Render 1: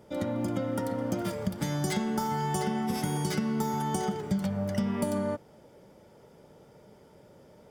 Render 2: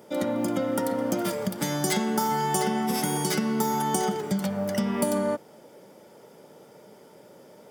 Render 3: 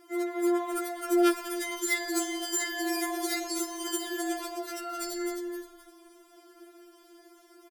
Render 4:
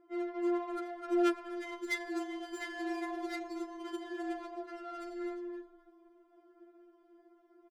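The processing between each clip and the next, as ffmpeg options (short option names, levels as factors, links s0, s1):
-af "highpass=210,highshelf=f=8700:g=7.5,volume=1.88"
-filter_complex "[0:a]asplit=2[s0][s1];[s1]asplit=4[s2][s3][s4][s5];[s2]adelay=260,afreqshift=-41,volume=0.562[s6];[s3]adelay=520,afreqshift=-82,volume=0.168[s7];[s4]adelay=780,afreqshift=-123,volume=0.0507[s8];[s5]adelay=1040,afreqshift=-164,volume=0.0151[s9];[s6][s7][s8][s9]amix=inputs=4:normalize=0[s10];[s0][s10]amix=inputs=2:normalize=0,afftfilt=real='re*4*eq(mod(b,16),0)':imag='im*4*eq(mod(b,16),0)':win_size=2048:overlap=0.75"
-af "adynamicsmooth=sensitivity=3.5:basefreq=1200,volume=0.531"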